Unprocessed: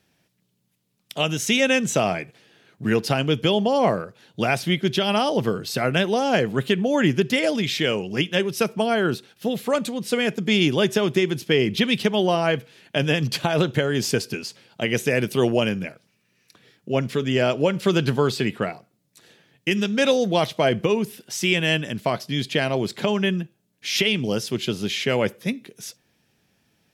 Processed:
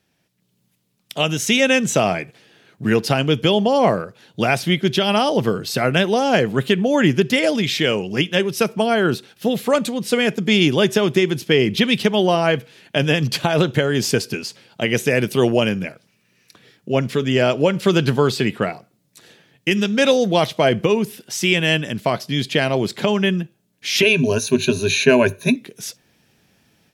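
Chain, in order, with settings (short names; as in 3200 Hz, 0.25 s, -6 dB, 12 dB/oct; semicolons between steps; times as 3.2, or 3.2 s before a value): AGC gain up to 9 dB; 24.02–25.56 ripple EQ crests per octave 1.5, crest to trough 18 dB; gain -2 dB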